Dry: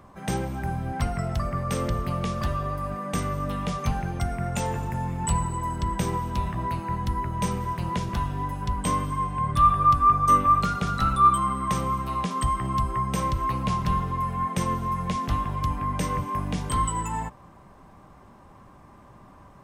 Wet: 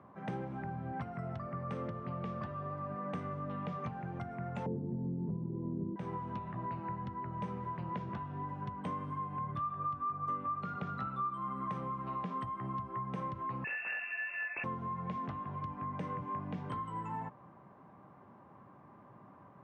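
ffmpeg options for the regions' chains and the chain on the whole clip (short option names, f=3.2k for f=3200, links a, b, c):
-filter_complex "[0:a]asettb=1/sr,asplit=3[a][b][c];[a]atrim=end=4.664[d];[b]atrim=start=4.66:end=5.96,asetpts=PTS-STARTPTS,afade=t=in:d=0.004:c=qsin,afade=t=out:st=1.296:d=0.004:c=qsin,lowpass=f=400:t=q:w=2.5,equalizer=f=210:t=o:w=1.9:g=13[e];[c]atrim=start=5.956[f];[d][e]acrossfade=d=0.004:c1=hsin:c2=qsin[g];[g][f]acrossfade=d=0.004:c1=qsin:c2=hsin,asettb=1/sr,asplit=3[h][i][j];[h]atrim=end=13.644[k];[i]atrim=start=13.64:end=14.64,asetpts=PTS-STARTPTS,afade=t=in:d=0.004:c=qsin,afade=t=out:st=0.996:d=0.004:c=qsin,asoftclip=type=hard:threshold=-20.5dB,lowpass=f=2.4k:t=q:w=0.5098,lowpass=f=2.4k:t=q:w=0.6013,lowpass=f=2.4k:t=q:w=0.9,lowpass=f=2.4k:t=q:w=2.563,afreqshift=-2800[l];[j]atrim=start=14.636[m];[k][l]acrossfade=d=0.004:c1=hsin:c2=qsin[n];[n][m]acrossfade=d=0.004:c1=qsin:c2=hsin,lowpass=1.8k,acompressor=threshold=-29dB:ratio=6,highpass=f=110:w=0.5412,highpass=f=110:w=1.3066,volume=-5.5dB"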